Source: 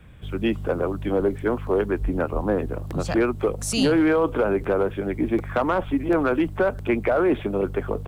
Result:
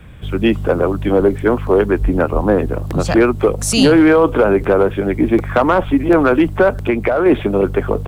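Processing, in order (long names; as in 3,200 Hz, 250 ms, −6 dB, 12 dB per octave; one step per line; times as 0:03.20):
0:06.84–0:07.26: downward compressor, threshold −21 dBFS, peak gain reduction 5 dB
level +9 dB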